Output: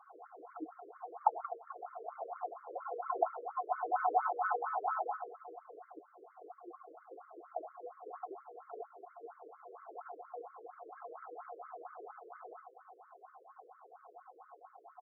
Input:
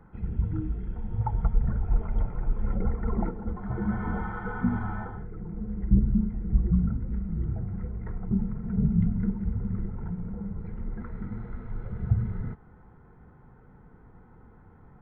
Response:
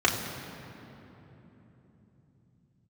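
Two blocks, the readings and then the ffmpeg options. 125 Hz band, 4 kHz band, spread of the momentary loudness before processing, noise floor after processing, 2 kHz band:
under -40 dB, no reading, 12 LU, -64 dBFS, -3.5 dB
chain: -filter_complex "[0:a]bandreject=f=590:w=12,asubboost=boost=2.5:cutoff=71,alimiter=limit=0.168:level=0:latency=1:release=341,asplit=3[s0][s1][s2];[s0]bandpass=f=730:t=q:w=8,volume=1[s3];[s1]bandpass=f=1090:t=q:w=8,volume=0.501[s4];[s2]bandpass=f=2440:t=q:w=8,volume=0.355[s5];[s3][s4][s5]amix=inputs=3:normalize=0,asplit=2[s6][s7];[s7]aecho=0:1:69|79:0.596|0.299[s8];[s6][s8]amix=inputs=2:normalize=0,afftfilt=real='re*between(b*sr/1024,420*pow(1600/420,0.5+0.5*sin(2*PI*4.3*pts/sr))/1.41,420*pow(1600/420,0.5+0.5*sin(2*PI*4.3*pts/sr))*1.41)':imag='im*between(b*sr/1024,420*pow(1600/420,0.5+0.5*sin(2*PI*4.3*pts/sr))/1.41,420*pow(1600/420,0.5+0.5*sin(2*PI*4.3*pts/sr))*1.41)':win_size=1024:overlap=0.75,volume=7.08"

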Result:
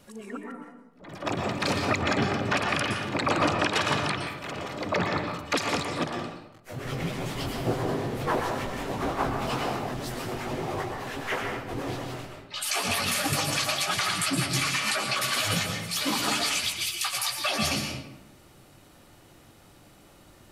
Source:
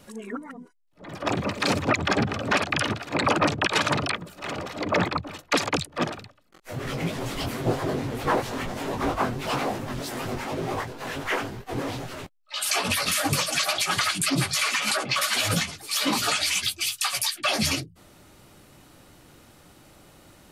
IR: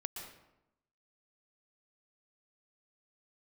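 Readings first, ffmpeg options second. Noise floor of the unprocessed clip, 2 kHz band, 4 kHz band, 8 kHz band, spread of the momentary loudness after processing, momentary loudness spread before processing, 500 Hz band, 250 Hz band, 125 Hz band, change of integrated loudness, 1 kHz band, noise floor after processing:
-54 dBFS, -2.0 dB, -2.0 dB, -2.5 dB, 11 LU, 10 LU, -1.5 dB, -2.0 dB, -1.5 dB, -2.0 dB, -1.5 dB, -54 dBFS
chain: -filter_complex "[1:a]atrim=start_sample=2205[s0];[0:a][s0]afir=irnorm=-1:irlink=0,volume=0.891"

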